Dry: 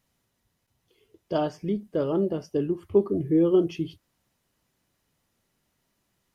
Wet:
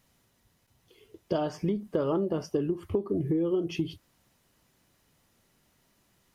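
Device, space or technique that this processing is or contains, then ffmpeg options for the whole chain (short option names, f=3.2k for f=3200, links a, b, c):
serial compression, leveller first: -filter_complex "[0:a]acompressor=threshold=-25dB:ratio=2,acompressor=threshold=-31dB:ratio=6,asettb=1/sr,asplit=3[a][b][c];[a]atrim=end=1.484[d];[b]atrim=start=1.48:end=2.62,asetpts=PTS-STARTPTS,afade=t=in:d=0.004:c=qsin,afade=t=out:st=1.136:d=0.004:c=qsin,equalizer=f=1.1k:w=1.8:g=5.5[e];[c]atrim=start=2.616[f];[d][e]acrossfade=d=0.004:c1=hsin:c2=qsin[g];[g][f]acrossfade=d=0.004:c1=qsin:c2=hsin,volume=6dB"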